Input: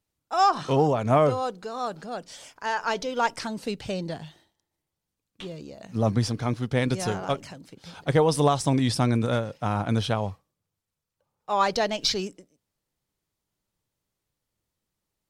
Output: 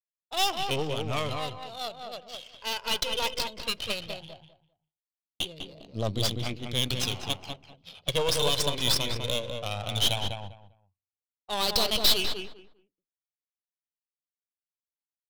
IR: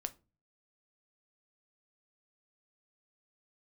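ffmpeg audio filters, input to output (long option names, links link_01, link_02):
-filter_complex "[0:a]flanger=delay=0.2:depth=1.8:regen=21:speed=0.17:shape=sinusoidal,agate=range=-33dB:threshold=-47dB:ratio=3:detection=peak,highshelf=frequency=2200:width_type=q:width=3:gain=11.5,bandreject=frequency=1800:width=12,adynamicsmooth=sensitivity=4:basefreq=1500,equalizer=frequency=210:width_type=o:width=1.6:gain=-7,aeval=exprs='(tanh(10*val(0)+0.8)-tanh(0.8))/10':channel_layout=same,asplit=2[link_01][link_02];[link_02]adelay=199,lowpass=frequency=1900:poles=1,volume=-4dB,asplit=2[link_03][link_04];[link_04]adelay=199,lowpass=frequency=1900:poles=1,volume=0.21,asplit=2[link_05][link_06];[link_06]adelay=199,lowpass=frequency=1900:poles=1,volume=0.21[link_07];[link_01][link_03][link_05][link_07]amix=inputs=4:normalize=0,asplit=2[link_08][link_09];[1:a]atrim=start_sample=2205[link_10];[link_09][link_10]afir=irnorm=-1:irlink=0,volume=-12.5dB[link_11];[link_08][link_11]amix=inputs=2:normalize=0"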